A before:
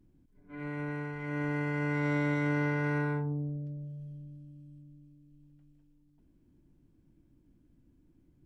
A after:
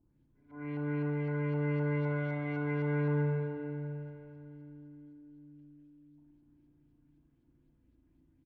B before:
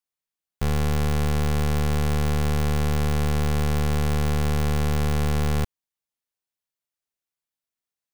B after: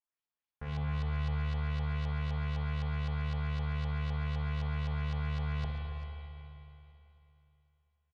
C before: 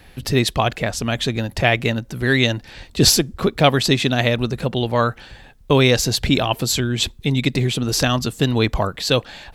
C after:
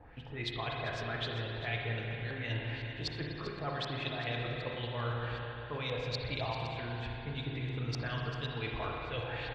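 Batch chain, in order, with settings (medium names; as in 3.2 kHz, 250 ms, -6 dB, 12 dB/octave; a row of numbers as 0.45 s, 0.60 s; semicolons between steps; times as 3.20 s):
dynamic bell 250 Hz, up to -8 dB, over -36 dBFS, Q 2.6; reverse; compression 8:1, threshold -31 dBFS; reverse; comb of notches 190 Hz; LFO low-pass saw up 3.9 Hz 760–4700 Hz; on a send: delay 394 ms -13.5 dB; on the sum: spring tank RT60 3.1 s, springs 34/54 ms, chirp 30 ms, DRR -1.5 dB; trim -7 dB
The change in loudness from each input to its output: -0.5 LU, -10.5 LU, -18.5 LU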